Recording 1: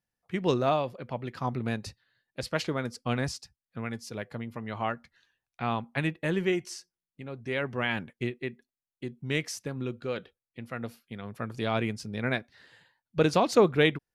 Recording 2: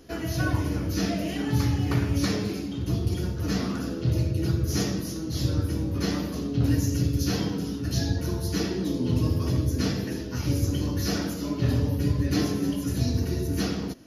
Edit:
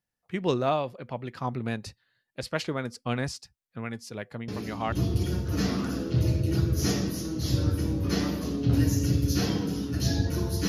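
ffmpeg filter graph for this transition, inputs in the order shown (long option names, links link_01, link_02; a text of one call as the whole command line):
ffmpeg -i cue0.wav -i cue1.wav -filter_complex "[1:a]asplit=2[link_01][link_02];[0:a]apad=whole_dur=10.68,atrim=end=10.68,atrim=end=4.922[link_03];[link_02]atrim=start=2.828:end=8.59[link_04];[link_01]atrim=start=2.39:end=2.83,asetpts=PTS-STARTPTS,volume=-6dB,afade=type=in:duration=0.004:curve=hsin,afade=type=out:start_time=0.436:duration=0.004:curve=hsin,adelay=4480[link_05];[link_03][link_04]acrossfade=duration=0.004:curve1=hsin:curve2=hsin[link_06];[link_06][link_05]amix=inputs=2:normalize=0" out.wav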